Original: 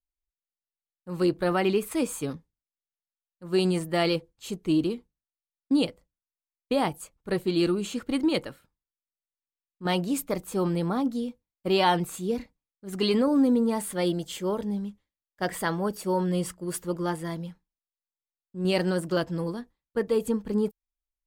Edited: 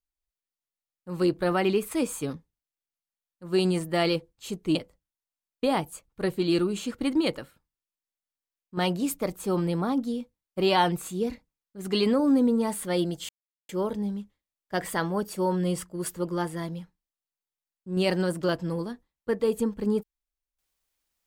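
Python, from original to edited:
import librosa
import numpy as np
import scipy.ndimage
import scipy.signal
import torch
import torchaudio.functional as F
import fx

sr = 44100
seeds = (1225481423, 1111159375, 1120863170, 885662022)

y = fx.edit(x, sr, fx.cut(start_s=4.75, length_s=1.08),
    fx.insert_silence(at_s=14.37, length_s=0.4), tone=tone)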